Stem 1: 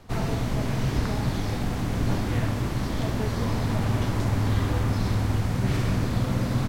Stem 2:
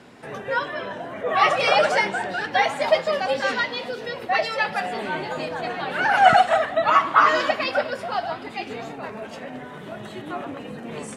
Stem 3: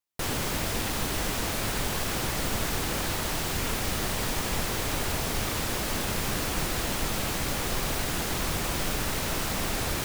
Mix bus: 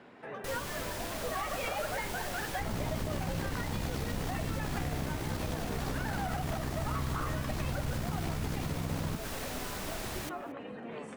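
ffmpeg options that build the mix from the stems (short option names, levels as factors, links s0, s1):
-filter_complex "[0:a]alimiter=limit=0.126:level=0:latency=1,aeval=exprs='val(0)*sin(2*PI*32*n/s)':c=same,adelay=2500,volume=1[s0];[1:a]bass=f=250:g=-4,treble=f=4000:g=-14,bandreject=f=50:t=h:w=6,bandreject=f=100:t=h:w=6,bandreject=f=150:t=h:w=6,acompressor=threshold=0.02:ratio=2,volume=0.531[s1];[2:a]adelay=250,volume=0.316,asplit=2[s2][s3];[s3]volume=0.0708,aecho=0:1:227:1[s4];[s0][s1][s2][s4]amix=inputs=4:normalize=0,alimiter=level_in=1.06:limit=0.0631:level=0:latency=1:release=121,volume=0.944"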